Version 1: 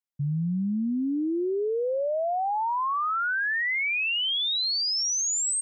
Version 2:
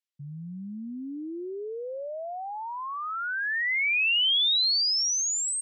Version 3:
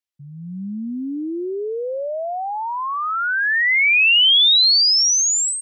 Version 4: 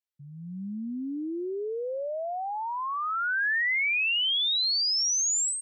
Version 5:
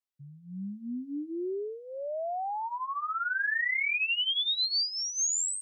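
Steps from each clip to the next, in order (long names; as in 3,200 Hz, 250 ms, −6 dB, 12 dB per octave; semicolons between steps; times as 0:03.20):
meter weighting curve D; level −8 dB
automatic gain control gain up to 10 dB
brickwall limiter −16 dBFS, peak gain reduction 6 dB; level −7 dB
flanger 0.38 Hz, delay 6.5 ms, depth 8 ms, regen −3%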